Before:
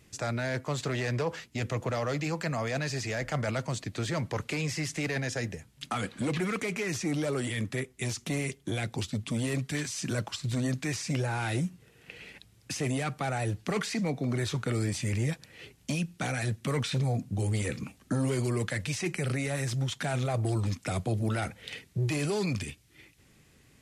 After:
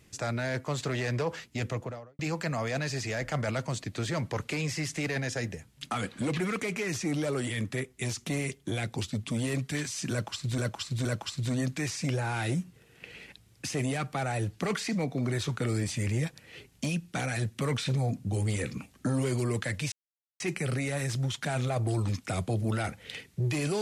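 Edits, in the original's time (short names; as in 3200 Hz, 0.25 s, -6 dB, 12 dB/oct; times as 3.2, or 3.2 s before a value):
1.61–2.19 studio fade out
10.11–10.58 loop, 3 plays
18.98 insert silence 0.48 s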